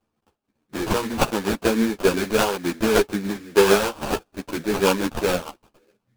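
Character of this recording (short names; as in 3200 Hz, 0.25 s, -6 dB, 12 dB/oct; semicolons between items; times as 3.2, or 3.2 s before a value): aliases and images of a low sample rate 2000 Hz, jitter 20%; tremolo triangle 6.8 Hz, depth 50%; a shimmering, thickened sound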